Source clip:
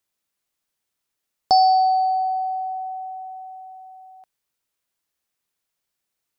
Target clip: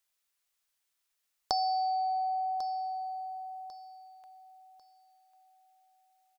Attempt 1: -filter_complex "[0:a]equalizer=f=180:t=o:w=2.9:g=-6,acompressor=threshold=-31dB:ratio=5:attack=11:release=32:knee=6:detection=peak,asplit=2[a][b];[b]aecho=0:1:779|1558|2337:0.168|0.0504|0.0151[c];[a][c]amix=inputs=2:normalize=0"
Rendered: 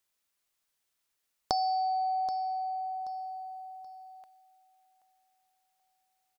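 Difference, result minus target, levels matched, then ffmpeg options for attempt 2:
250 Hz band +6.5 dB; echo 0.317 s early
-filter_complex "[0:a]equalizer=f=180:t=o:w=2.9:g=-15.5,acompressor=threshold=-31dB:ratio=5:attack=11:release=32:knee=6:detection=peak,asplit=2[a][b];[b]aecho=0:1:1096|2192|3288:0.168|0.0504|0.0151[c];[a][c]amix=inputs=2:normalize=0"

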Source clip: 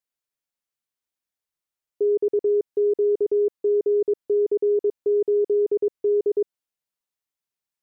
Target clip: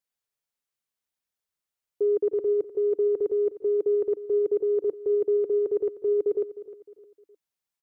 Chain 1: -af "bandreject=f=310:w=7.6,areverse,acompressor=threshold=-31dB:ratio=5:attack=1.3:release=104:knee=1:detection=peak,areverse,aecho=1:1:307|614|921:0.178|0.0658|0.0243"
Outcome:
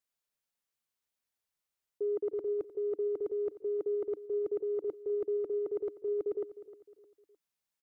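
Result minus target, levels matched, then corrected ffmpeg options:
compressor: peak gain reduction +9 dB
-af "bandreject=f=310:w=7.6,areverse,acompressor=threshold=-19.5dB:ratio=5:attack=1.3:release=104:knee=1:detection=peak,areverse,aecho=1:1:307|614|921:0.178|0.0658|0.0243"

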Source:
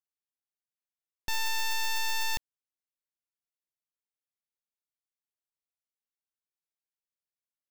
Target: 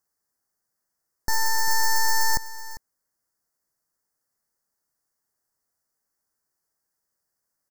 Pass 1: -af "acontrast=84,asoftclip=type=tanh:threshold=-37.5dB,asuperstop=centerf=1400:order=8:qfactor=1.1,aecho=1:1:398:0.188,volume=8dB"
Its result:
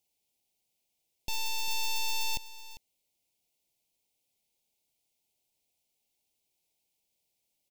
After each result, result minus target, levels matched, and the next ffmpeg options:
soft clip: distortion +15 dB; 4000 Hz band +4.5 dB
-af "acontrast=84,asoftclip=type=tanh:threshold=-26.5dB,asuperstop=centerf=1400:order=8:qfactor=1.1,aecho=1:1:398:0.188,volume=8dB"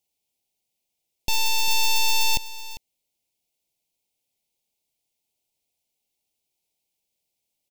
4000 Hz band +4.5 dB
-af "acontrast=84,asoftclip=type=tanh:threshold=-26.5dB,asuperstop=centerf=3000:order=8:qfactor=1.1,aecho=1:1:398:0.188,volume=8dB"

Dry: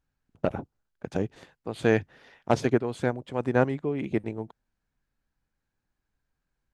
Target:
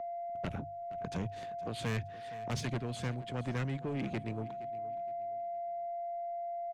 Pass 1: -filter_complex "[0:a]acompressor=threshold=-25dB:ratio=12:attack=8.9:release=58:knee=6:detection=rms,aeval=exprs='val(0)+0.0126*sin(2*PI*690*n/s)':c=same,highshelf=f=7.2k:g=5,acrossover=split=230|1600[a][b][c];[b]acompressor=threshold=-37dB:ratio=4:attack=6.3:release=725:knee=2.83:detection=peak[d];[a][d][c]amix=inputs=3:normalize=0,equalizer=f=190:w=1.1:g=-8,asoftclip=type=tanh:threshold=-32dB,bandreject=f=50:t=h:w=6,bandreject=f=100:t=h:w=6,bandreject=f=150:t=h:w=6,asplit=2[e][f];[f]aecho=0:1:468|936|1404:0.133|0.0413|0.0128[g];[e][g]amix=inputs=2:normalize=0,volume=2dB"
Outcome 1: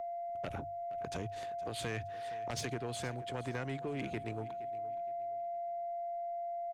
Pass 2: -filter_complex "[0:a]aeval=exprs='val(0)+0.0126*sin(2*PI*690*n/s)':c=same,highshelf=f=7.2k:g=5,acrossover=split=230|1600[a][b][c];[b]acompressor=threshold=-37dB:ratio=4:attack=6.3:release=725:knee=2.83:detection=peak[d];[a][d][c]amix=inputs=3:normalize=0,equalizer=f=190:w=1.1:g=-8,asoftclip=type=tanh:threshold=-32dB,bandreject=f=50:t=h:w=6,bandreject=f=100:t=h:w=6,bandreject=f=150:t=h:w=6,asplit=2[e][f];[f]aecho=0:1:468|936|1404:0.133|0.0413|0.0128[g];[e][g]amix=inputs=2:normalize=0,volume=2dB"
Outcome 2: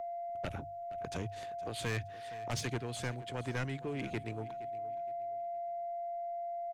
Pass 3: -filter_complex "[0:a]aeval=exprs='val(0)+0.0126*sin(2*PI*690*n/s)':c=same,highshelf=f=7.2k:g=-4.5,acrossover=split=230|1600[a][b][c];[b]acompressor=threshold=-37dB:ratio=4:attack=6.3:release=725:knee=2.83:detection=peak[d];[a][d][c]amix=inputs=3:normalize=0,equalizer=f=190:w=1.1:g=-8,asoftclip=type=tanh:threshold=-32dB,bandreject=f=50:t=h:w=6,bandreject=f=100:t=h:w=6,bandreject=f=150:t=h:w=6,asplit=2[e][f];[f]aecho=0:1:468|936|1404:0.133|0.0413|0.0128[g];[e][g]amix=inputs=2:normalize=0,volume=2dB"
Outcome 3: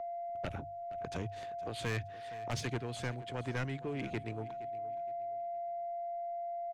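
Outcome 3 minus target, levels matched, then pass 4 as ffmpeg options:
250 Hz band -2.5 dB
-filter_complex "[0:a]aeval=exprs='val(0)+0.0126*sin(2*PI*690*n/s)':c=same,highshelf=f=7.2k:g=-4.5,acrossover=split=230|1600[a][b][c];[b]acompressor=threshold=-37dB:ratio=4:attack=6.3:release=725:knee=2.83:detection=peak[d];[a][d][c]amix=inputs=3:normalize=0,asoftclip=type=tanh:threshold=-32dB,bandreject=f=50:t=h:w=6,bandreject=f=100:t=h:w=6,bandreject=f=150:t=h:w=6,asplit=2[e][f];[f]aecho=0:1:468|936|1404:0.133|0.0413|0.0128[g];[e][g]amix=inputs=2:normalize=0,volume=2dB"

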